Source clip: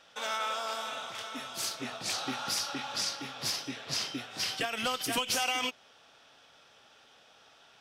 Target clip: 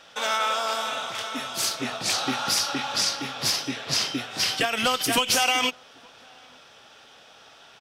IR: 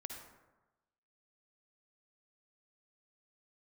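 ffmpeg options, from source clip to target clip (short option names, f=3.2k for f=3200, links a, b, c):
-filter_complex "[0:a]asplit=2[a][b];[b]adelay=874.6,volume=-29dB,highshelf=f=4k:g=-19.7[c];[a][c]amix=inputs=2:normalize=0,volume=8.5dB"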